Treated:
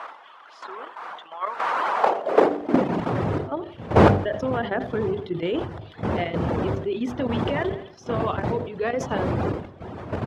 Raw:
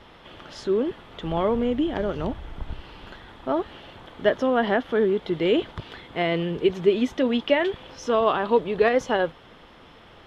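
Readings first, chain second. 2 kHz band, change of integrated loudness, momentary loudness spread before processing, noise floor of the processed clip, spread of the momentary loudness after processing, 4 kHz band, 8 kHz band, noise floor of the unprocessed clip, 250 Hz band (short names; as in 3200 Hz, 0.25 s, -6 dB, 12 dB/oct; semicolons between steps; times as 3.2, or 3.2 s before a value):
-1.0 dB, -0.5 dB, 17 LU, -48 dBFS, 16 LU, -5.0 dB, n/a, -50 dBFS, +0.5 dB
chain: wind noise 600 Hz -20 dBFS; reverb removal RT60 0.88 s; high shelf 3200 Hz -4.5 dB; de-hum 49 Hz, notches 16; high-pass sweep 1100 Hz -> 96 Hz, 1.85–3.31; level quantiser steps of 12 dB; feedback echo 85 ms, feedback 51%, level -19 dB; sustainer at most 97 dB/s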